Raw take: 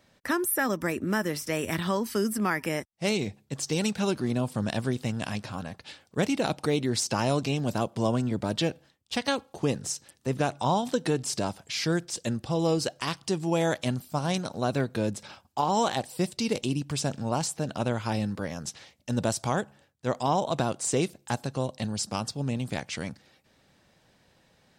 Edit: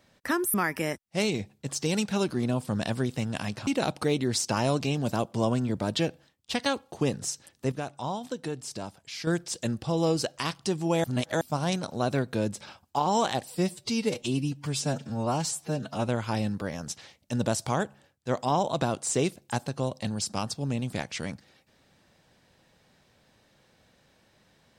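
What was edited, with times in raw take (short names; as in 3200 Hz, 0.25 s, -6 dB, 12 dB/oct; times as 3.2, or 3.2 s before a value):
0.54–2.41 cut
5.54–6.29 cut
10.34–11.89 gain -7.5 dB
13.66–14.03 reverse
16.17–17.86 stretch 1.5×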